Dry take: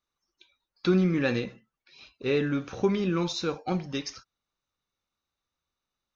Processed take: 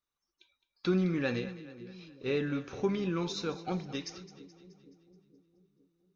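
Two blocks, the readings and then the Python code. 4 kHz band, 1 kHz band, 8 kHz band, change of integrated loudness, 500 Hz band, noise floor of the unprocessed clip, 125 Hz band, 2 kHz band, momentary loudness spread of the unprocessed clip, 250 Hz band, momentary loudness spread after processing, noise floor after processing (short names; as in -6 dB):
-5.5 dB, -5.5 dB, n/a, -5.5 dB, -5.5 dB, under -85 dBFS, -5.5 dB, -5.5 dB, 11 LU, -5.5 dB, 18 LU, under -85 dBFS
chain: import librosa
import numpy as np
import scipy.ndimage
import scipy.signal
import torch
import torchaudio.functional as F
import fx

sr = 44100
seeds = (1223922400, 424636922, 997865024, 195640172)

y = fx.echo_split(x, sr, split_hz=430.0, low_ms=465, high_ms=213, feedback_pct=52, wet_db=-15.5)
y = y * librosa.db_to_amplitude(-5.5)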